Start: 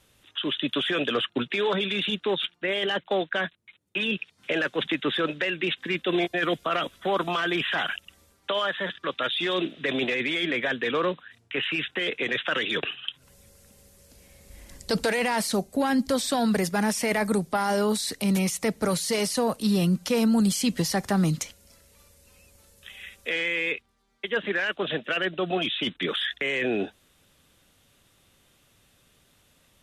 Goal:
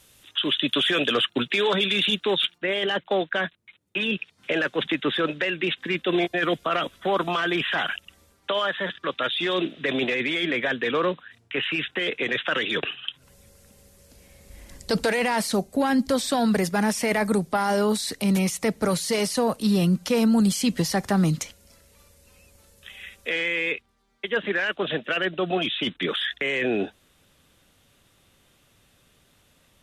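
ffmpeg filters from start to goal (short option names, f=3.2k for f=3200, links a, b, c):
-af "asetnsamples=n=441:p=0,asendcmd='2.58 highshelf g -2.5',highshelf=f=3.8k:g=9,volume=2dB"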